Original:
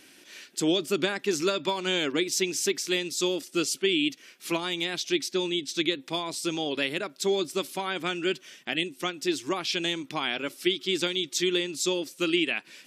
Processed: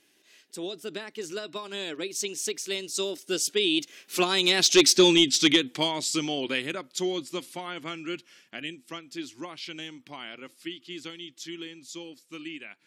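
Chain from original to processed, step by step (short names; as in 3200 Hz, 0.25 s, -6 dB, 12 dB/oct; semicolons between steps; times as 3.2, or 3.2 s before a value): Doppler pass-by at 4.96, 25 m/s, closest 10 m; dynamic EQ 6200 Hz, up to +5 dB, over -49 dBFS, Q 0.89; in parallel at -3 dB: sine folder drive 7 dB, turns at -11 dBFS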